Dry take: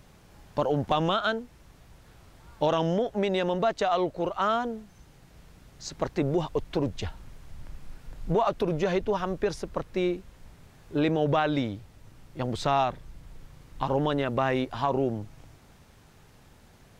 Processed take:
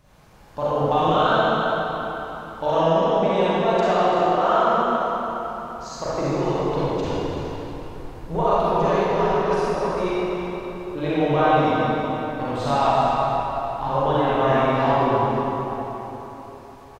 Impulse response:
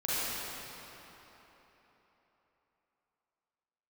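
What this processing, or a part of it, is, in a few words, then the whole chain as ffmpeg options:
cave: -filter_complex "[0:a]asettb=1/sr,asplit=3[link_01][link_02][link_03];[link_01]atrim=end=2.754[link_04];[link_02]atrim=start=2.75:end=3.33,asetpts=PTS-STARTPTS,afade=type=in:duration=0.004:curve=qsin,afade=type=out:start_time=0.576:duration=0.004:curve=qsin,lowpass=8000[link_05];[link_03]atrim=start=3.326[link_06];[link_04][link_05]acrossfade=duration=0.004:curve1=hsin:curve2=qsin[link_07];[link_07][link_06]acrossfade=duration=0.004:curve1=qsin:curve2=hsin,aecho=1:1:337:0.316[link_08];[1:a]atrim=start_sample=2205[link_09];[link_08][link_09]afir=irnorm=-1:irlink=0,equalizer=frequency=910:width=1.2:gain=5.5,volume=-4.5dB"

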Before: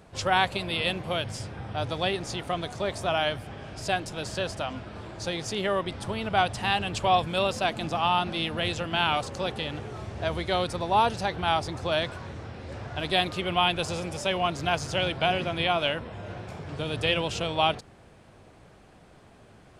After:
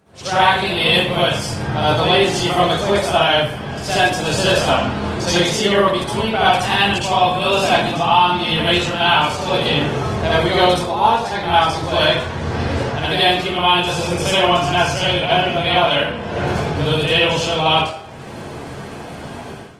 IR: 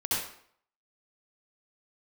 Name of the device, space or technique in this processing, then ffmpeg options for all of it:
far-field microphone of a smart speaker: -filter_complex "[1:a]atrim=start_sample=2205[link_01];[0:a][link_01]afir=irnorm=-1:irlink=0,highpass=91,dynaudnorm=framelen=110:gausssize=5:maxgain=16.5dB,volume=-1.5dB" -ar 48000 -c:a libopus -b:a 20k

